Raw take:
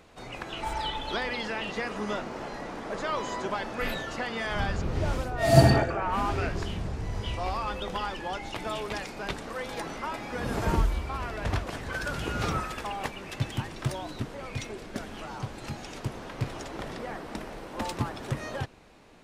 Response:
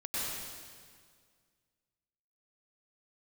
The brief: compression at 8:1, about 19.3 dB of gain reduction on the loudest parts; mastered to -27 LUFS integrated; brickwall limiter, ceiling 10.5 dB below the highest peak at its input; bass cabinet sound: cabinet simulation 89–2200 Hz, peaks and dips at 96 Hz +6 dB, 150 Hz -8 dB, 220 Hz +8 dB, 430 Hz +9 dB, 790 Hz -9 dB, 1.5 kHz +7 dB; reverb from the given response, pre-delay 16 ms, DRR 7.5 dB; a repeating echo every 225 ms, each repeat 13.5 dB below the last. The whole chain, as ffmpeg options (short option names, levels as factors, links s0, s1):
-filter_complex "[0:a]acompressor=threshold=0.0251:ratio=8,alimiter=level_in=1.5:limit=0.0631:level=0:latency=1,volume=0.668,aecho=1:1:225|450:0.211|0.0444,asplit=2[s0][s1];[1:a]atrim=start_sample=2205,adelay=16[s2];[s1][s2]afir=irnorm=-1:irlink=0,volume=0.237[s3];[s0][s3]amix=inputs=2:normalize=0,highpass=f=89:w=0.5412,highpass=f=89:w=1.3066,equalizer=f=96:t=q:w=4:g=6,equalizer=f=150:t=q:w=4:g=-8,equalizer=f=220:t=q:w=4:g=8,equalizer=f=430:t=q:w=4:g=9,equalizer=f=790:t=q:w=4:g=-9,equalizer=f=1500:t=q:w=4:g=7,lowpass=f=2200:w=0.5412,lowpass=f=2200:w=1.3066,volume=2.82"